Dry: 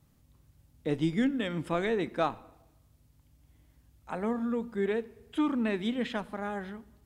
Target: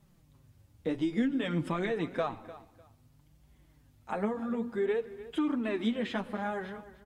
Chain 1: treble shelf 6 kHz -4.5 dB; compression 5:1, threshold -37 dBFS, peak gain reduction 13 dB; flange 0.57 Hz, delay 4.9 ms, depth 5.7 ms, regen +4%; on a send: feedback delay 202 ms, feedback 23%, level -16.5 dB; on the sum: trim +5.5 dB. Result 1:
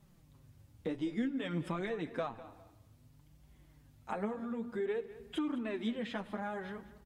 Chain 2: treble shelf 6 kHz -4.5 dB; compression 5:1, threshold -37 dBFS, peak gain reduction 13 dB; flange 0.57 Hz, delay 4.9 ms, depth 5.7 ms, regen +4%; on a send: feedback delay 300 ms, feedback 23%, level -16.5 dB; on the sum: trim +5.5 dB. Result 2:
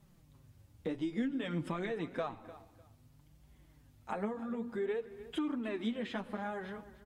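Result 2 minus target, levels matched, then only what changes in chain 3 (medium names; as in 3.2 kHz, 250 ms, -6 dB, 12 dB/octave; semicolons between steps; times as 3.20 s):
compression: peak gain reduction +5.5 dB
change: compression 5:1, threshold -30 dBFS, peak gain reduction 7.5 dB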